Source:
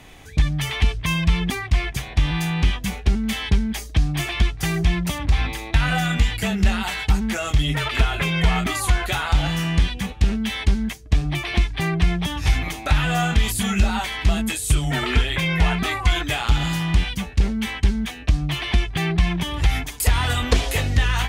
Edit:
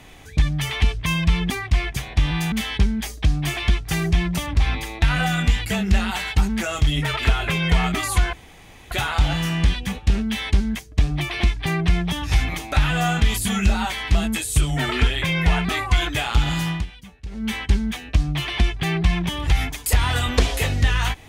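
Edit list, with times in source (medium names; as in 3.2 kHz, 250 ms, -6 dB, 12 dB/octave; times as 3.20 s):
2.52–3.24 s: delete
9.05 s: insert room tone 0.58 s
16.84–17.61 s: dip -16 dB, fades 0.16 s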